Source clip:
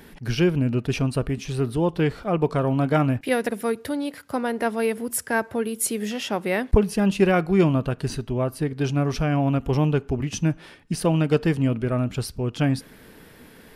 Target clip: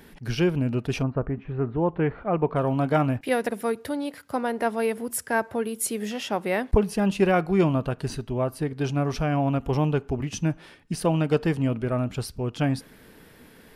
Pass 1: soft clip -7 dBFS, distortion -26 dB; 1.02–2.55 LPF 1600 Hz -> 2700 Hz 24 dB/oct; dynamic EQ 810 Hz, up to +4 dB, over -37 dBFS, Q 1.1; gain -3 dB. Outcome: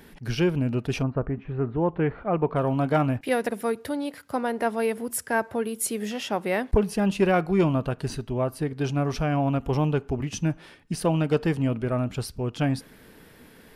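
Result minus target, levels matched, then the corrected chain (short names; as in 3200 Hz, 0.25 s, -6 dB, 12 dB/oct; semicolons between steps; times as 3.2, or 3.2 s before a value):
soft clip: distortion +12 dB
soft clip 0 dBFS, distortion -39 dB; 1.02–2.55 LPF 1600 Hz -> 2700 Hz 24 dB/oct; dynamic EQ 810 Hz, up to +4 dB, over -37 dBFS, Q 1.1; gain -3 dB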